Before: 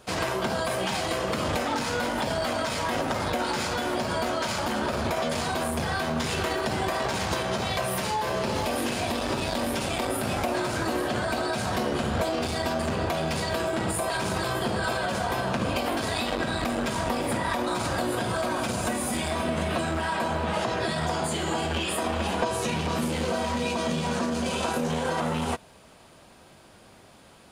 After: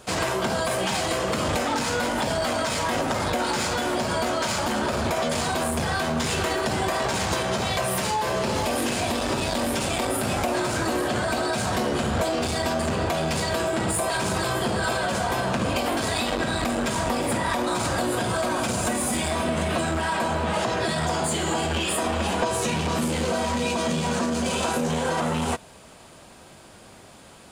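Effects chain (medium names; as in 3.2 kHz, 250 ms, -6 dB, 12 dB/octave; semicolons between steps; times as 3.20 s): peaking EQ 7.7 kHz +5 dB 0.54 oct; in parallel at -3.5 dB: saturation -30 dBFS, distortion -9 dB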